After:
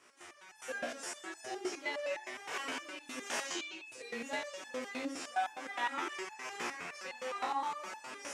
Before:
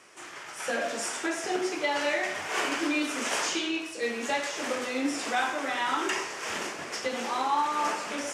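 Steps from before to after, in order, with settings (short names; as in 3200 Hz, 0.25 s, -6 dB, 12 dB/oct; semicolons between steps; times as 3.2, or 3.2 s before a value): painted sound noise, 5.86–7.46, 720–2700 Hz -36 dBFS; chorus 1.1 Hz, delay 19.5 ms, depth 8 ms; stepped resonator 9.7 Hz 60–860 Hz; gain +3.5 dB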